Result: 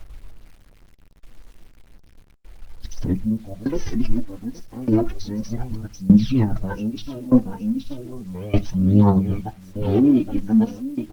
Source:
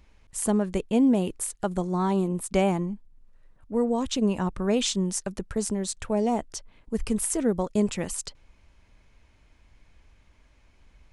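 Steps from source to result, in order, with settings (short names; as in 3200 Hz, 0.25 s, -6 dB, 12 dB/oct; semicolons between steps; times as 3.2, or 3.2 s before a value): whole clip reversed; tone controls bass +11 dB, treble +3 dB; feedback echo 0.822 s, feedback 29%, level -10.5 dB; formant-preserving pitch shift -11 st; tremolo saw down 0.82 Hz, depth 90%; de-esser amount 95%; phaser 0.33 Hz, delay 4.4 ms, feedback 66%; spectral delete 3.16–3.54, 1100–8900 Hz; high shelf 7500 Hz -10 dB; reverb RT60 0.25 s, pre-delay 7 ms, DRR 13.5 dB; bit-crush 9-bit; gain +2.5 dB; Opus 20 kbps 48000 Hz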